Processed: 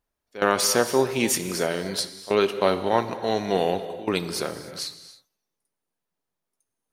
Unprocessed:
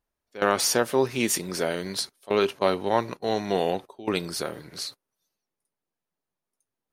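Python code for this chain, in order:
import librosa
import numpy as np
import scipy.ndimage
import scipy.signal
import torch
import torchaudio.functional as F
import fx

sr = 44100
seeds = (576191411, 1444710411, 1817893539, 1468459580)

y = fx.rev_gated(x, sr, seeds[0], gate_ms=330, shape='flat', drr_db=10.5)
y = F.gain(torch.from_numpy(y), 1.5).numpy()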